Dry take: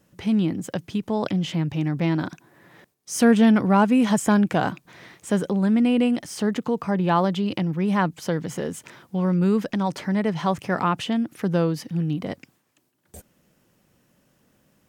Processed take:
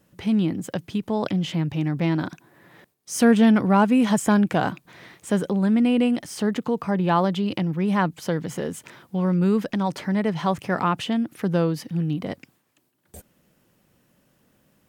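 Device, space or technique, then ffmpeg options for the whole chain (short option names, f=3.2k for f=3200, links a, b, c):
exciter from parts: -filter_complex "[0:a]asplit=2[a][b];[b]highpass=3k,asoftclip=type=tanh:threshold=-36.5dB,highpass=f=4.8k:w=0.5412,highpass=f=4.8k:w=1.3066,volume=-12dB[c];[a][c]amix=inputs=2:normalize=0"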